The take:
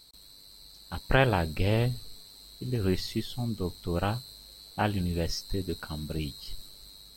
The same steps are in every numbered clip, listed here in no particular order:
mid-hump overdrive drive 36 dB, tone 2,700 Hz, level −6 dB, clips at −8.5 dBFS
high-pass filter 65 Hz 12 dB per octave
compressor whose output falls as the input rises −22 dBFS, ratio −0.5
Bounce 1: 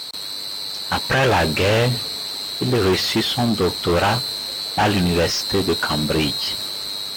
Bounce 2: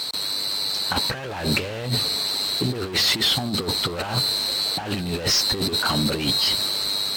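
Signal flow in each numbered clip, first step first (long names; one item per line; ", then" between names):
compressor whose output falls as the input rises, then mid-hump overdrive, then high-pass filter
mid-hump overdrive, then high-pass filter, then compressor whose output falls as the input rises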